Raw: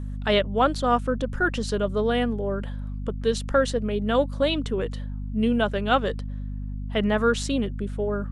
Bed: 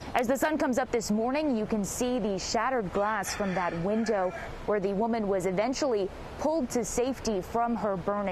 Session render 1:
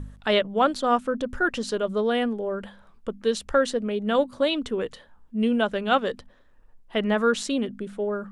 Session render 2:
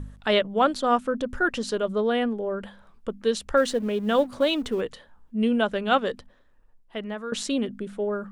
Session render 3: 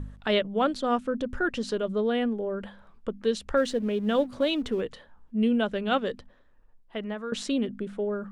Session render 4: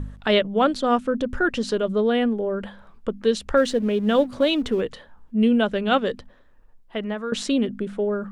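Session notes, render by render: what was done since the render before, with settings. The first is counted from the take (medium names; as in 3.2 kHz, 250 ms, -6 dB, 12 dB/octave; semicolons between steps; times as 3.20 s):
de-hum 50 Hz, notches 5
1.92–2.63 s: treble shelf 5.3 kHz -6.5 dB; 3.57–4.81 s: companding laws mixed up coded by mu; 6.04–7.32 s: fade out, to -14.5 dB
low-pass 3.9 kHz 6 dB/octave; dynamic bell 1 kHz, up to -6 dB, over -35 dBFS, Q 0.72
trim +5.5 dB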